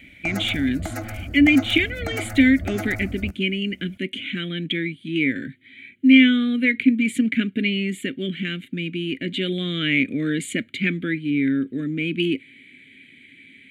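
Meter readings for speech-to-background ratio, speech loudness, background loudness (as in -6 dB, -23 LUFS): 11.0 dB, -22.0 LUFS, -33.0 LUFS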